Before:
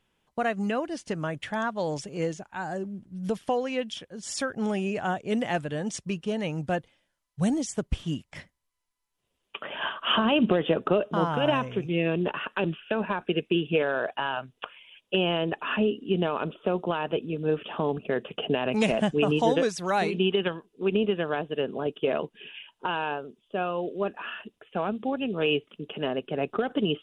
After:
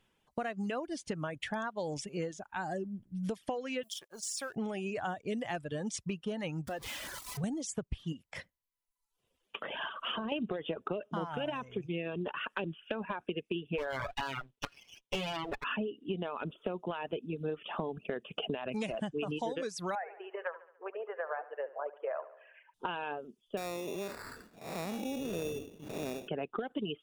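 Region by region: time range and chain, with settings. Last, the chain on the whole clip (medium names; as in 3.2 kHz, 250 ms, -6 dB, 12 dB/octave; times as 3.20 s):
3.83–4.56 s: companding laws mixed up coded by A + tone controls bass -15 dB, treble +13 dB + compression 3:1, threshold -36 dBFS
6.67–7.44 s: jump at every zero crossing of -33.5 dBFS + high-pass 45 Hz + compression 3:1, threshold -35 dBFS
8.12–10.32 s: peaking EQ 510 Hz +5.5 dB 0.31 oct + band-stop 570 Hz, Q 19 + compression 2:1, threshold -36 dBFS
13.78–15.64 s: comb filter that takes the minimum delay 7.1 ms + waveshaping leveller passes 1
19.95–22.74 s: elliptic band-pass 540–1900 Hz, stop band 50 dB + distance through air 170 m + feedback delay 71 ms, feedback 51%, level -8 dB
23.57–26.28 s: spectral blur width 251 ms + band-stop 1.7 kHz, Q 9.8 + sample-rate reducer 3.1 kHz
whole clip: reverb removal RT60 0.95 s; compression 6:1, threshold -33 dBFS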